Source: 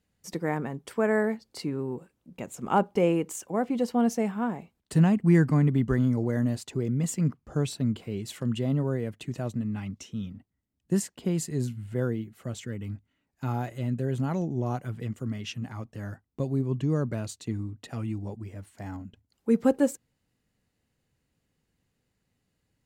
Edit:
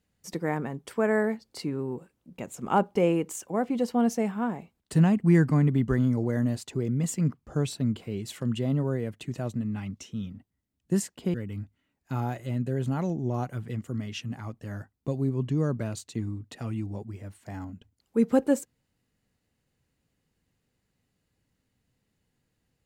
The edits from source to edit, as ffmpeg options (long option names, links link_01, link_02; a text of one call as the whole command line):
ffmpeg -i in.wav -filter_complex "[0:a]asplit=2[link_01][link_02];[link_01]atrim=end=11.342[link_03];[link_02]atrim=start=12.658[link_04];[link_03][link_04]acrossfade=duration=0.004:curve1=hsin:curve2=hsin" out.wav